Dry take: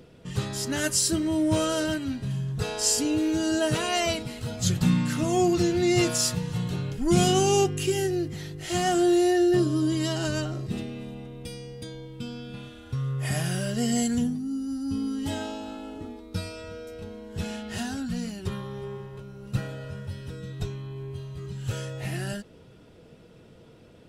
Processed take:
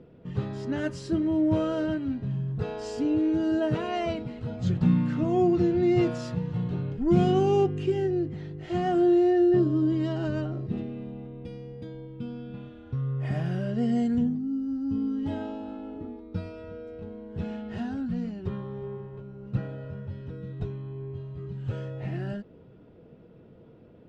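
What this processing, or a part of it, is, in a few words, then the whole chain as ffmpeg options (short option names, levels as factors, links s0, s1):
phone in a pocket: -af "lowpass=3500,equalizer=f=260:t=o:w=3:g=5.5,highshelf=f=2200:g=-9,volume=0.596"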